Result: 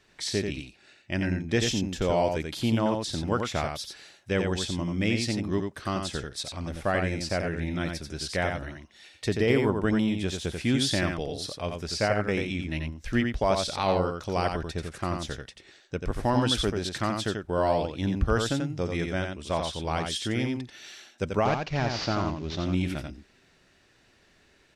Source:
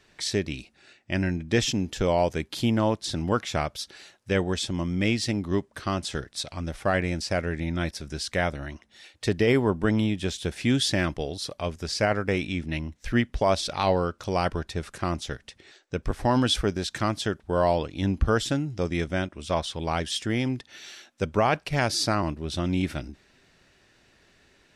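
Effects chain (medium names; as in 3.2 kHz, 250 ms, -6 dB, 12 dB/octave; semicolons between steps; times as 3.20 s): 21.45–22.65 s: CVSD coder 32 kbps; delay 88 ms -5 dB; trim -2.5 dB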